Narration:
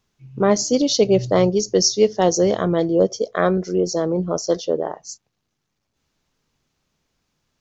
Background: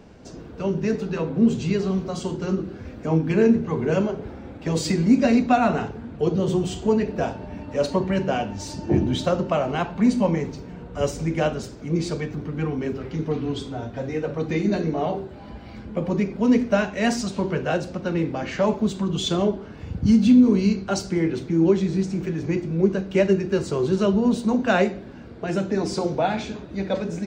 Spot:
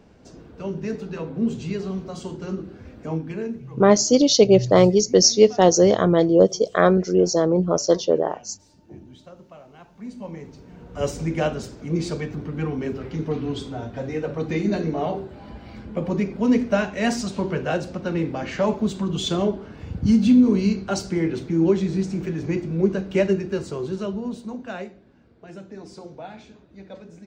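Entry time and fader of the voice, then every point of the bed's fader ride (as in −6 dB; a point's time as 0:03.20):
3.40 s, +2.0 dB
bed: 0:03.09 −5 dB
0:03.98 −23 dB
0:09.76 −23 dB
0:11.08 −0.5 dB
0:23.18 −0.5 dB
0:24.95 −15.5 dB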